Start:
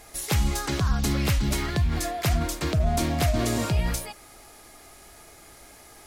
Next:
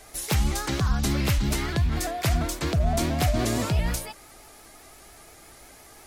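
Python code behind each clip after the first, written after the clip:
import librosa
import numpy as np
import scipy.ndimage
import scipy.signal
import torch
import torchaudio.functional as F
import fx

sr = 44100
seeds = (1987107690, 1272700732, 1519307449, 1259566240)

y = fx.vibrato_shape(x, sr, shape='saw_up', rate_hz=5.8, depth_cents=100.0)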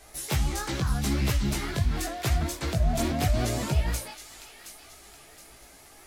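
y = fx.chorus_voices(x, sr, voices=2, hz=0.81, base_ms=18, depth_ms=4.0, mix_pct=45)
y = fx.echo_wet_highpass(y, sr, ms=720, feedback_pct=44, hz=2100.0, wet_db=-9.5)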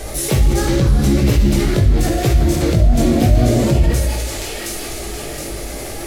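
y = fx.low_shelf_res(x, sr, hz=680.0, db=7.0, q=1.5)
y = fx.rev_gated(y, sr, seeds[0], gate_ms=360, shape='falling', drr_db=0.5)
y = fx.env_flatten(y, sr, amount_pct=50)
y = y * 10.0 ** (-1.0 / 20.0)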